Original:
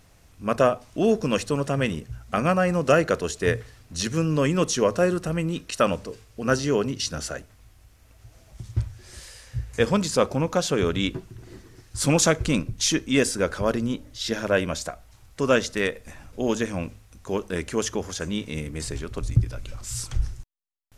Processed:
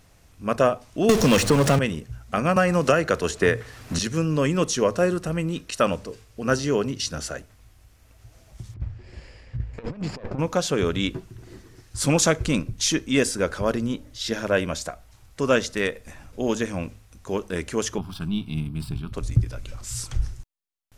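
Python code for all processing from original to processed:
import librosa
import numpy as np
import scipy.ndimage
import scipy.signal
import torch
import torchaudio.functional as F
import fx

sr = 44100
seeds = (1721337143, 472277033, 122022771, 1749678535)

y = fx.chain(x, sr, fx.power_curve(exponent=0.5),
    fx.band_squash(depth_pct=100), at=(1.09, 1.79))
y = fx.chain(y, sr, fx.peak_eq(hz=1400.0, db=3.0, octaves=1.8),
    fx.band_squash(depth_pct=100), at=(2.56, 3.99))
y = fx.chain(y, sr, fx.lower_of_two(delay_ms=0.41),
    fx.over_compress(threshold_db=-28.0, ratio=-0.5),
    fx.spacing_loss(db_at_10k=28), at=(8.74, 10.39))
y = fx.chain(y, sr, fx.halfwave_gain(db=-7.0),
    fx.peak_eq(hz=160.0, db=10.0, octaves=1.4),
    fx.fixed_phaser(hz=1900.0, stages=6), at=(17.98, 19.13))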